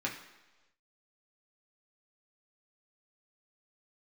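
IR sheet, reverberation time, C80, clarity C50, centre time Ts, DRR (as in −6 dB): non-exponential decay, 10.5 dB, 7.5 dB, 27 ms, −3.0 dB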